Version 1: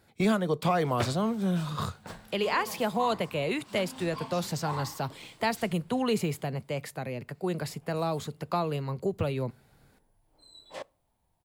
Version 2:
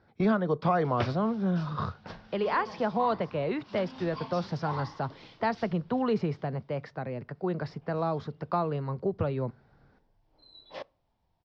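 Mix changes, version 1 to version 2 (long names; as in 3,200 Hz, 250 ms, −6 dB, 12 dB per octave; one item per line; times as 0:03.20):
speech: add high shelf with overshoot 2,000 Hz −7.5 dB, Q 1.5
master: add Chebyshev low-pass filter 5,500 Hz, order 5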